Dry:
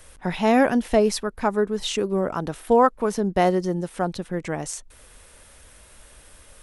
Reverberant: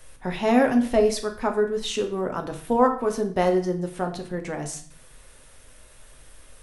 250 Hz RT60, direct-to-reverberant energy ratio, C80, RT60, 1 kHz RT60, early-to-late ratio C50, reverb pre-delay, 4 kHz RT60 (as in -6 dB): 0.80 s, 4.0 dB, 14.5 dB, 0.50 s, 0.45 s, 11.0 dB, 7 ms, 0.50 s